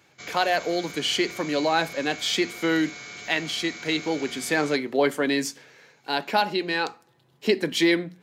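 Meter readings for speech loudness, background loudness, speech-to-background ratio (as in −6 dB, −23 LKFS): −25.0 LKFS, −38.0 LKFS, 13.0 dB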